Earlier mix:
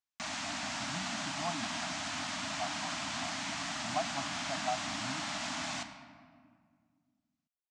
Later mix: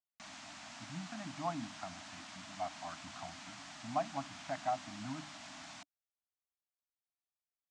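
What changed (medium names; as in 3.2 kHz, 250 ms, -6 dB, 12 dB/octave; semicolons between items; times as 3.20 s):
background -11.5 dB; reverb: off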